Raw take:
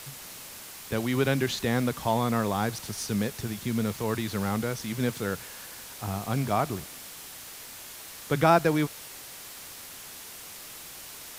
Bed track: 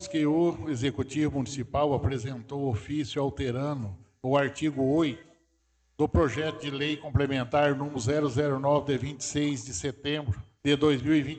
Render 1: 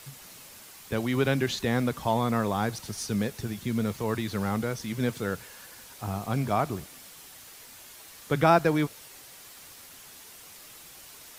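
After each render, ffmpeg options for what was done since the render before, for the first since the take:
-af "afftdn=nr=6:nf=-44"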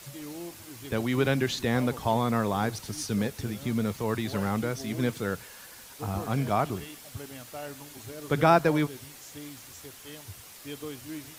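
-filter_complex "[1:a]volume=-16dB[a];[0:a][a]amix=inputs=2:normalize=0"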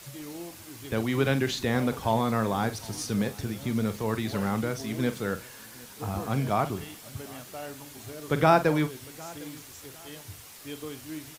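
-filter_complex "[0:a]asplit=2[a][b];[b]adelay=45,volume=-12dB[c];[a][c]amix=inputs=2:normalize=0,aecho=1:1:755|1510:0.0708|0.0227"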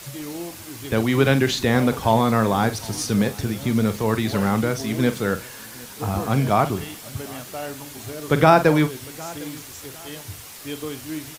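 -af "volume=7.5dB,alimiter=limit=-2dB:level=0:latency=1"

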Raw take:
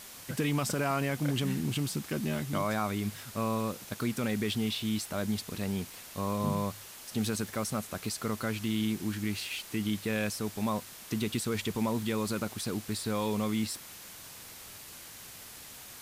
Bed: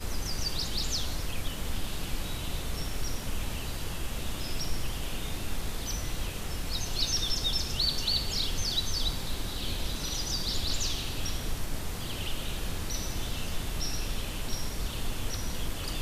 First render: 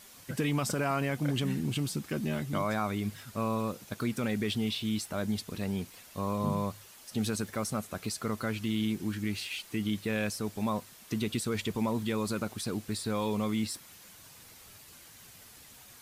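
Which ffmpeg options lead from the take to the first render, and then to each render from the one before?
-af "afftdn=nr=7:nf=-48"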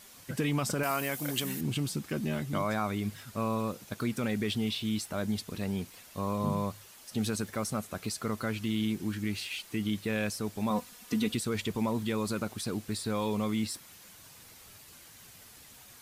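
-filter_complex "[0:a]asettb=1/sr,asplit=3[a][b][c];[a]atrim=end=0.834[d];[b]atrim=start=0.83:end=1.61,asetpts=PTS-STARTPTS,afade=t=in:d=0.004:c=qsin,afade=t=out:st=0.776:d=0.004:c=qsin,aemphasis=mode=production:type=bsi[e];[c]atrim=start=1.606[f];[d][e]acrossfade=d=0.004:c1=hsin:c2=qsin[g];[g][f]acrossfade=d=0.004:c1=qsin:c2=hsin,asettb=1/sr,asplit=3[h][i][j];[h]atrim=end=10.704[k];[i]atrim=start=10.7:end=11.35,asetpts=PTS-STARTPTS,afade=t=in:d=0.004:c=qsin,afade=t=out:st=0.646:d=0.004:c=qsin,aecho=1:1:4.1:0.75,atrim=end_sample=28665[l];[j]atrim=start=11.346[m];[k][l]acrossfade=d=0.004:c1=hsin:c2=qsin[n];[n][m]acrossfade=d=0.004:c1=qsin:c2=hsin"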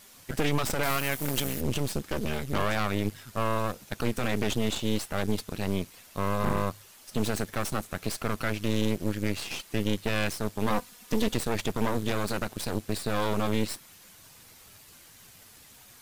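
-af "aeval=exprs='0.141*(cos(1*acos(clip(val(0)/0.141,-1,1)))-cos(1*PI/2))+0.0447*(cos(6*acos(clip(val(0)/0.141,-1,1)))-cos(6*PI/2))':c=same"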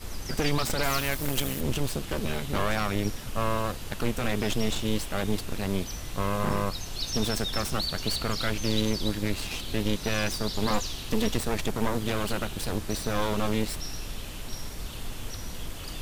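-filter_complex "[1:a]volume=-3.5dB[a];[0:a][a]amix=inputs=2:normalize=0"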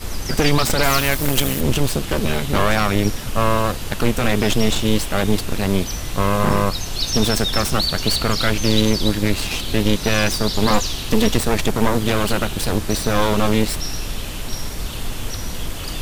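-af "volume=10dB"

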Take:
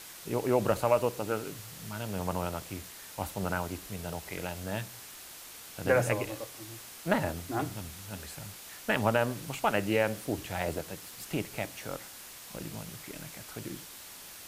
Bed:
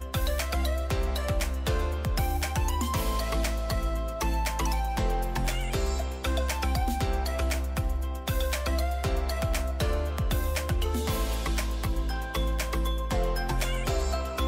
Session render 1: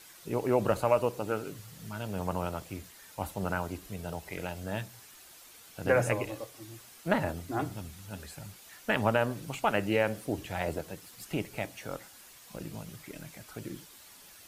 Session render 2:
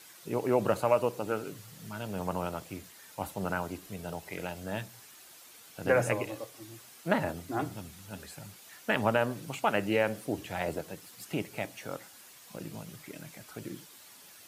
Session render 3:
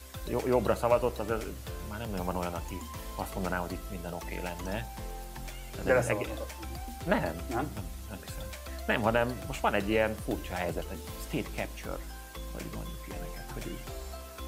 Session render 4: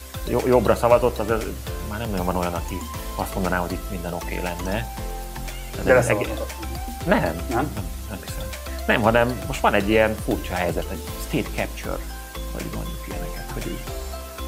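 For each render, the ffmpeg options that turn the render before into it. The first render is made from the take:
-af "afftdn=nr=8:nf=-48"
-af "highpass=110"
-filter_complex "[1:a]volume=-13.5dB[a];[0:a][a]amix=inputs=2:normalize=0"
-af "volume=9.5dB,alimiter=limit=-2dB:level=0:latency=1"

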